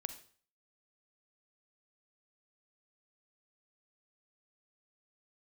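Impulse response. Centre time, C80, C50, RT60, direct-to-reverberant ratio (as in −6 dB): 8 ms, 15.0 dB, 11.0 dB, 0.45 s, 10.0 dB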